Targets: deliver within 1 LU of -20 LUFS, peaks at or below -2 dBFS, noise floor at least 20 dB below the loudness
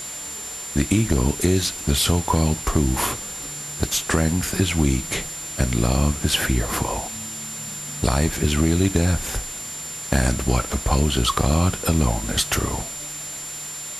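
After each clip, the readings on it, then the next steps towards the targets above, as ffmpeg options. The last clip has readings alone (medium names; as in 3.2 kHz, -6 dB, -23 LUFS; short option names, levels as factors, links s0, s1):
steady tone 7.2 kHz; tone level -32 dBFS; noise floor -33 dBFS; noise floor target -43 dBFS; loudness -22.5 LUFS; peak level -4.5 dBFS; loudness target -20.0 LUFS
-> -af "bandreject=f=7200:w=30"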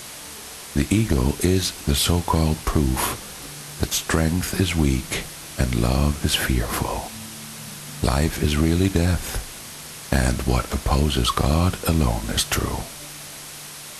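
steady tone not found; noise floor -38 dBFS; noise floor target -42 dBFS
-> -af "afftdn=nr=6:nf=-38"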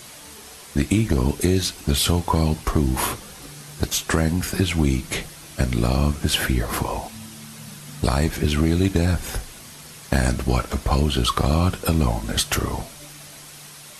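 noise floor -42 dBFS; noise floor target -43 dBFS
-> -af "afftdn=nr=6:nf=-42"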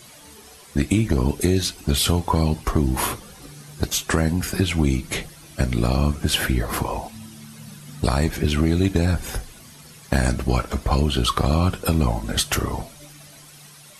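noise floor -46 dBFS; loudness -22.5 LUFS; peak level -5.0 dBFS; loudness target -20.0 LUFS
-> -af "volume=1.33"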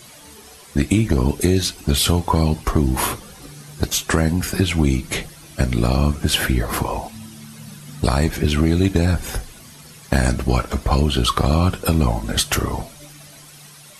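loudness -20.0 LUFS; peak level -2.5 dBFS; noise floor -43 dBFS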